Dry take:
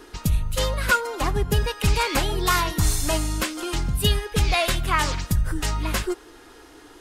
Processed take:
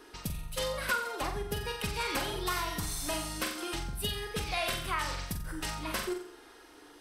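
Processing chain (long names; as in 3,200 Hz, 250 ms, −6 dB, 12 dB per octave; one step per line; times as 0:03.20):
on a send: flutter between parallel walls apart 7.6 metres, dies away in 0.48 s
on the sum: downward compressor, threshold −19 dBFS, peak gain reduction 6 dB
low-shelf EQ 190 Hz −9 dB
notch filter 6,900 Hz, Q 8.3
level −7 dB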